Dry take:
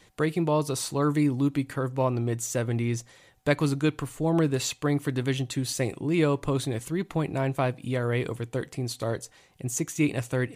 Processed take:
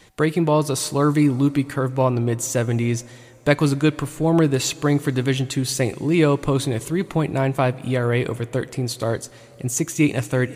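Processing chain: plate-style reverb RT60 4 s, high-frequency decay 0.8×, DRR 20 dB; trim +6.5 dB

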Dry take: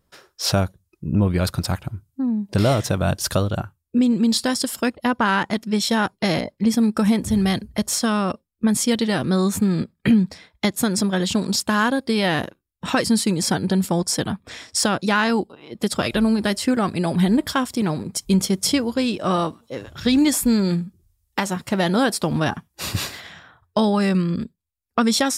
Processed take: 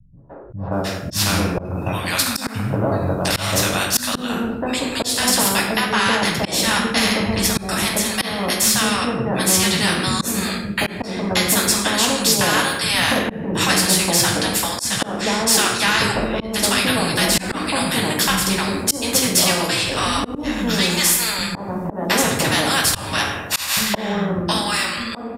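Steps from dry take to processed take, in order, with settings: fade out at the end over 0.70 s; three bands offset in time lows, mids, highs 170/720 ms, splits 190/830 Hz; reverberation RT60 0.65 s, pre-delay 7 ms, DRR -1.5 dB; slow attack 259 ms; vibrato 0.37 Hz 6.6 cents; spectrum-flattening compressor 2:1

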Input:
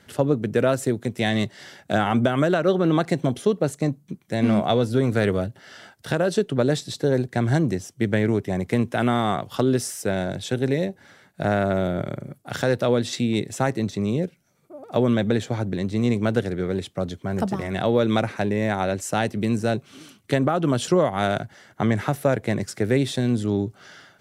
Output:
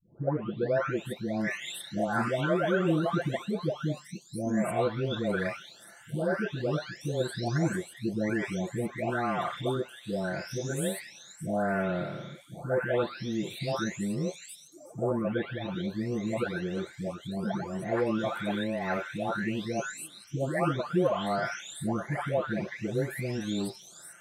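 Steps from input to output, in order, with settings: delay that grows with frequency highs late, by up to 970 ms; dynamic bell 1.5 kHz, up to +4 dB, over -38 dBFS, Q 1; trim -5.5 dB

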